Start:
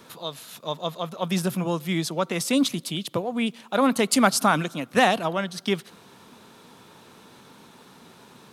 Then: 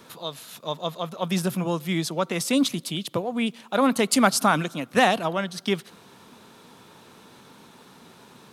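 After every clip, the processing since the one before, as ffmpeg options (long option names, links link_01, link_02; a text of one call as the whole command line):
ffmpeg -i in.wav -af anull out.wav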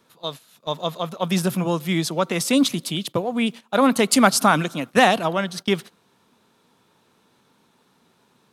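ffmpeg -i in.wav -af "agate=range=-15dB:threshold=-36dB:ratio=16:detection=peak,volume=3.5dB" out.wav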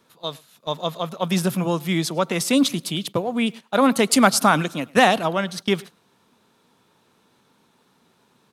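ffmpeg -i in.wav -filter_complex "[0:a]asplit=2[link_01][link_02];[link_02]adelay=105,volume=-25dB,highshelf=frequency=4000:gain=-2.36[link_03];[link_01][link_03]amix=inputs=2:normalize=0" out.wav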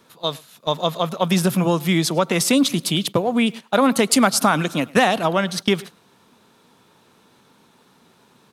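ffmpeg -i in.wav -af "acompressor=threshold=-21dB:ratio=2.5,volume=6dB" out.wav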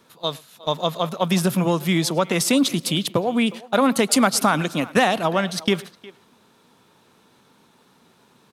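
ffmpeg -i in.wav -filter_complex "[0:a]asplit=2[link_01][link_02];[link_02]adelay=360,highpass=300,lowpass=3400,asoftclip=type=hard:threshold=-9.5dB,volume=-19dB[link_03];[link_01][link_03]amix=inputs=2:normalize=0,volume=-1.5dB" out.wav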